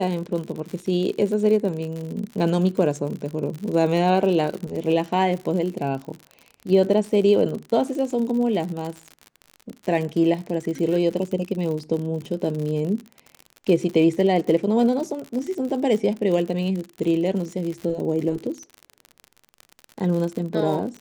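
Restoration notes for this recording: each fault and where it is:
surface crackle 68 per second −29 dBFS

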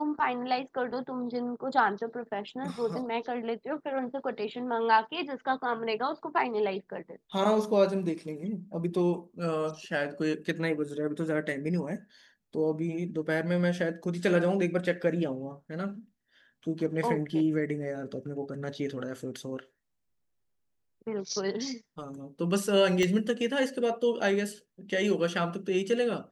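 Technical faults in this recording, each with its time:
0:23.03: click −16 dBFS

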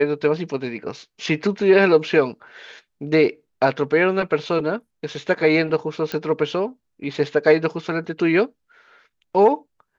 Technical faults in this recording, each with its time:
0:06.12: click −12 dBFS

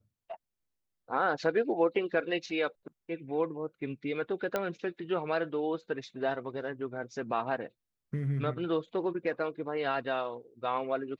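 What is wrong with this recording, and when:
0:04.56: click −16 dBFS

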